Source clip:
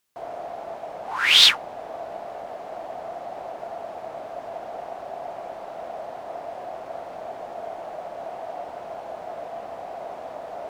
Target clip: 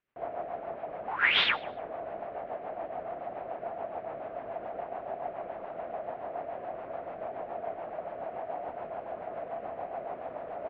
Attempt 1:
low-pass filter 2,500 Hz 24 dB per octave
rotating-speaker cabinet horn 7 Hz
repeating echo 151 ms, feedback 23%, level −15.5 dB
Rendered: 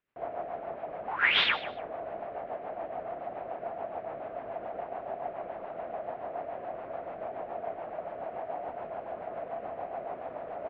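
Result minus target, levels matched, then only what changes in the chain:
echo-to-direct +7.5 dB
change: repeating echo 151 ms, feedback 23%, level −23 dB

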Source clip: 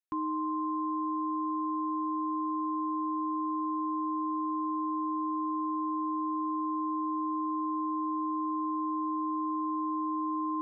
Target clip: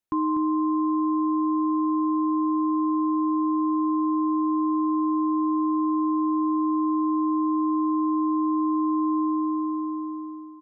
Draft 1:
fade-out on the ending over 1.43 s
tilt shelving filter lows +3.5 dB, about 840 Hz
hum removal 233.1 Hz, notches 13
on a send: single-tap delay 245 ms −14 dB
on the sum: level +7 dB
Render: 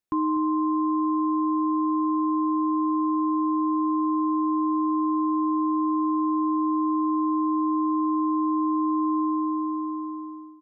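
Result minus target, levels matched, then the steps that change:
echo-to-direct −6.5 dB
change: single-tap delay 245 ms −7.5 dB

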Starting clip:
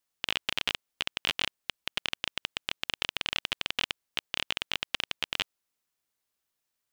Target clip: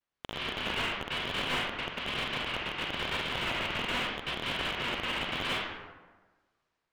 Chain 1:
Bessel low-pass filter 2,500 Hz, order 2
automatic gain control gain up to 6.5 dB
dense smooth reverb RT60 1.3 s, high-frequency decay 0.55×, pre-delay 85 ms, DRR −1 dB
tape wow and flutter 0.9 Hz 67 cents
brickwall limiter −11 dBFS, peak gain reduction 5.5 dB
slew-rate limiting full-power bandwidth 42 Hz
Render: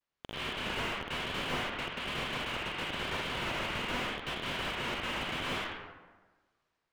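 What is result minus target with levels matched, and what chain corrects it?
slew-rate limiting: distortion +4 dB
Bessel low-pass filter 2,500 Hz, order 2
automatic gain control gain up to 6.5 dB
dense smooth reverb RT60 1.3 s, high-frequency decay 0.55×, pre-delay 85 ms, DRR −1 dB
tape wow and flutter 0.9 Hz 67 cents
brickwall limiter −11 dBFS, peak gain reduction 5.5 dB
slew-rate limiting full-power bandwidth 84.5 Hz

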